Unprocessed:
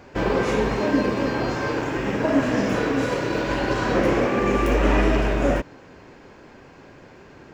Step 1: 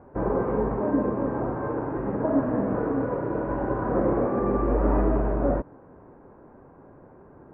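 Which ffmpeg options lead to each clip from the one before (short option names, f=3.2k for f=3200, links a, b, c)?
-af "lowpass=f=1.2k:w=0.5412,lowpass=f=1.2k:w=1.3066,volume=-3dB"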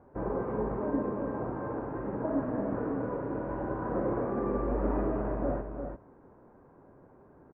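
-af "aecho=1:1:344:0.447,volume=-7.5dB"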